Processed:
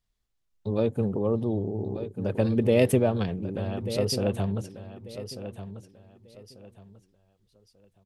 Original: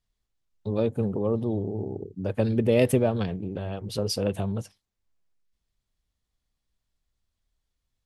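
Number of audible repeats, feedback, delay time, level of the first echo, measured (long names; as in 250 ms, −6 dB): 3, 27%, 1,191 ms, −11.5 dB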